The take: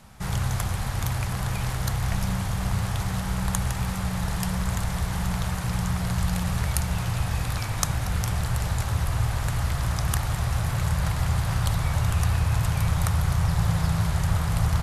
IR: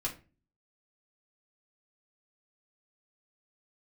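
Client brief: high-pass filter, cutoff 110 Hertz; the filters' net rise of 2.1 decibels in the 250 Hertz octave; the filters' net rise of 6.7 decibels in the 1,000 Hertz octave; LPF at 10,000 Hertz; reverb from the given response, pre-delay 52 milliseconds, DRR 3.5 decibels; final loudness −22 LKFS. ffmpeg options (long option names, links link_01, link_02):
-filter_complex "[0:a]highpass=110,lowpass=10000,equalizer=frequency=250:width_type=o:gain=5,equalizer=frequency=1000:width_type=o:gain=8,asplit=2[link_01][link_02];[1:a]atrim=start_sample=2205,adelay=52[link_03];[link_02][link_03]afir=irnorm=-1:irlink=0,volume=-6dB[link_04];[link_01][link_04]amix=inputs=2:normalize=0,volume=3dB"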